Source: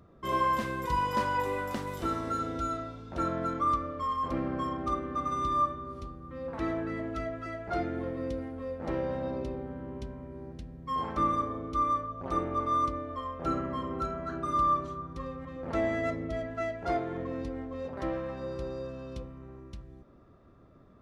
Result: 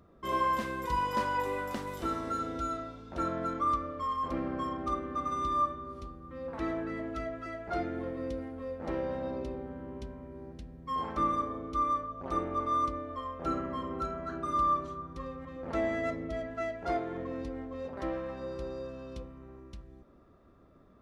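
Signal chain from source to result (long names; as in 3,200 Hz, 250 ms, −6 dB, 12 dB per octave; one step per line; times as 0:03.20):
parametric band 120 Hz −6 dB 0.68 octaves
level −1.5 dB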